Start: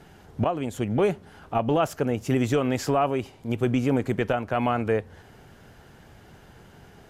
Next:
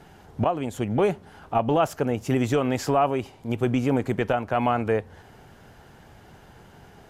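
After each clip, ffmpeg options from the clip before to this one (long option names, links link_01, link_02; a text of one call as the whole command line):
ffmpeg -i in.wav -af "equalizer=frequency=850:width_type=o:width=0.77:gain=3.5" out.wav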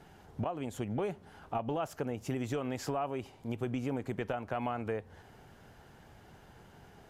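ffmpeg -i in.wav -af "acompressor=threshold=-26dB:ratio=3,volume=-6.5dB" out.wav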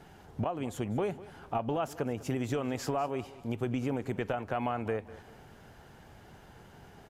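ffmpeg -i in.wav -af "aecho=1:1:197|394|591:0.126|0.0441|0.0154,volume=2.5dB" out.wav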